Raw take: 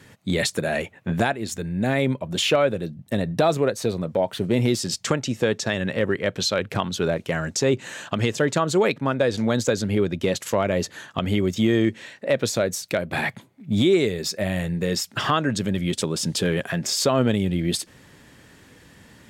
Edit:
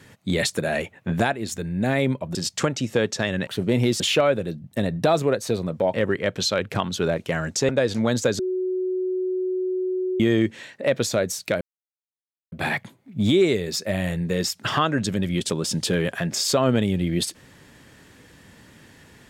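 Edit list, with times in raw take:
0:02.35–0:04.29: swap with 0:04.82–0:05.94
0:07.69–0:09.12: remove
0:09.82–0:11.63: beep over 370 Hz −22 dBFS
0:13.04: splice in silence 0.91 s

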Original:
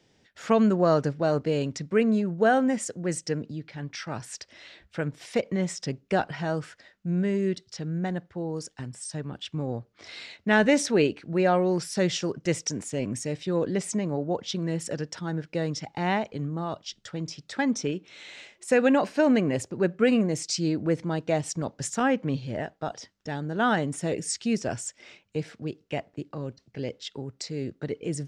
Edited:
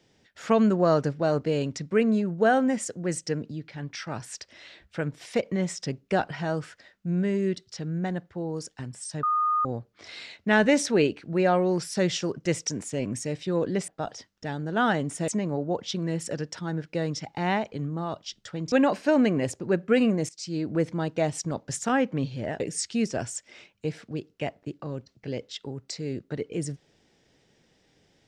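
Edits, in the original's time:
0:09.23–0:09.65: beep over 1,230 Hz −21 dBFS
0:17.32–0:18.83: remove
0:20.40–0:20.86: fade in, from −21 dB
0:22.71–0:24.11: move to 0:13.88

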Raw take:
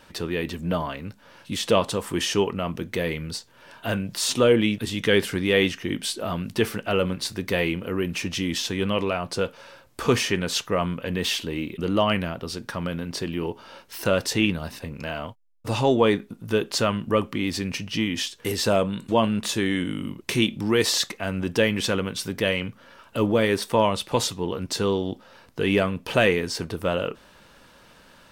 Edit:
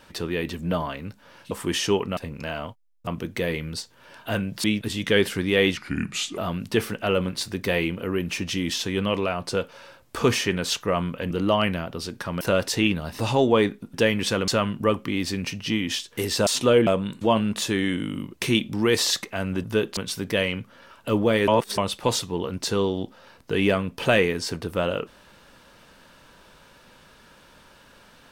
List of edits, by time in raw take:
0:01.51–0:01.98: remove
0:04.21–0:04.61: move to 0:18.74
0:05.74–0:06.22: play speed 79%
0:11.15–0:11.79: remove
0:12.89–0:13.99: remove
0:14.77–0:15.67: move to 0:02.64
0:16.42–0:16.75: swap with 0:21.51–0:22.05
0:23.56–0:23.86: reverse

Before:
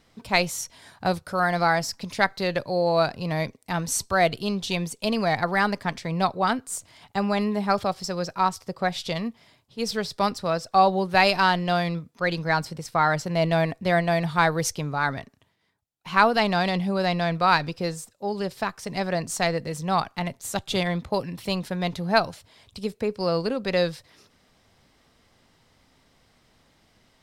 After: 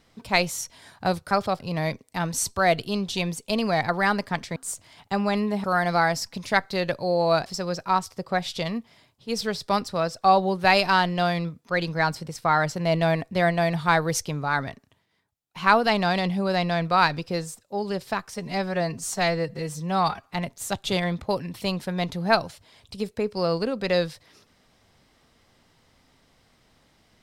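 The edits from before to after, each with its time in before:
0:01.31–0:03.13: swap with 0:07.68–0:07.96
0:06.10–0:06.60: remove
0:18.84–0:20.17: time-stretch 1.5×

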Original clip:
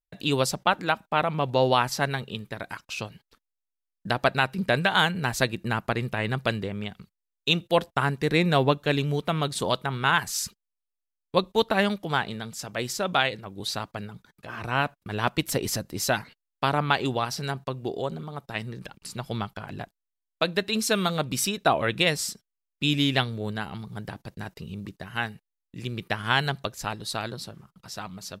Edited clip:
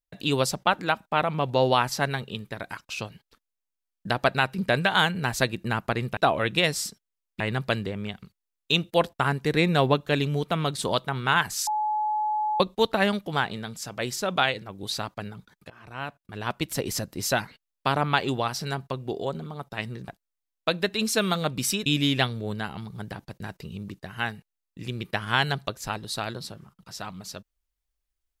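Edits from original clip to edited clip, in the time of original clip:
0:10.44–0:11.37: beep over 852 Hz −23 dBFS
0:14.47–0:15.91: fade in, from −17 dB
0:18.85–0:19.82: remove
0:21.60–0:22.83: move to 0:06.17

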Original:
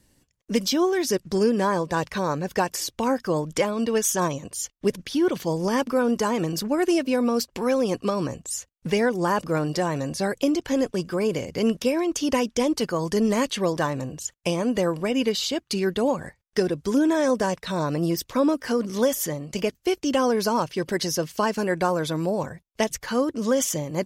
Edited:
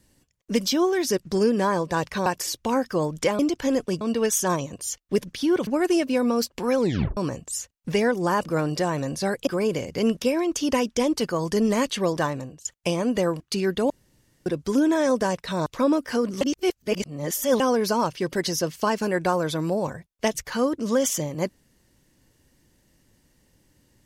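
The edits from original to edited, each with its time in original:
0:02.26–0:02.60: remove
0:05.39–0:06.65: remove
0:07.76: tape stop 0.39 s
0:10.45–0:11.07: move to 0:03.73
0:13.86–0:14.25: fade out, to −17.5 dB
0:15.00–0:15.59: remove
0:16.09–0:16.65: fill with room tone
0:17.85–0:18.22: remove
0:18.97–0:20.16: reverse

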